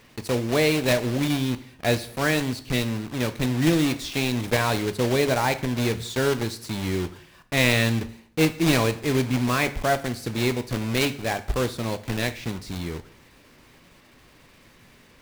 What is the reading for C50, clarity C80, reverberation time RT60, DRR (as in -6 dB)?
15.0 dB, 18.5 dB, 0.60 s, 10.0 dB